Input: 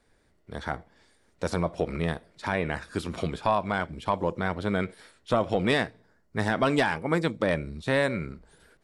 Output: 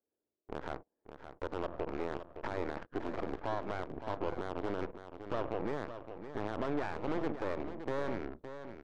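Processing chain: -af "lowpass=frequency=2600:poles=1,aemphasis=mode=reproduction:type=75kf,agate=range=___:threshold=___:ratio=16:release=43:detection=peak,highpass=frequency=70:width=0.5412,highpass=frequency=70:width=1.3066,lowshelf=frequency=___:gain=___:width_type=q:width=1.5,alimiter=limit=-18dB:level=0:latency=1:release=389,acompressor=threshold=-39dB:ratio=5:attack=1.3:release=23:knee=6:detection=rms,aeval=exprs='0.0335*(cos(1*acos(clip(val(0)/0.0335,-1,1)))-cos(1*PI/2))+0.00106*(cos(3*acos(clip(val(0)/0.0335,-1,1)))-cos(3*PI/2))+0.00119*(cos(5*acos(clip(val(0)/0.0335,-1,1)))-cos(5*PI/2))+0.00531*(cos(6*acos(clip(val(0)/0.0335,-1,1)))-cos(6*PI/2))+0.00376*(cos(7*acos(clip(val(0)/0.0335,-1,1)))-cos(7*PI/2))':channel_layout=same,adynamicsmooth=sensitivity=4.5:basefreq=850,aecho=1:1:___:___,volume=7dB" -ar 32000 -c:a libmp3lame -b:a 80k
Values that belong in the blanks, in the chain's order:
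-15dB, -54dB, 220, -12.5, 565, 0.316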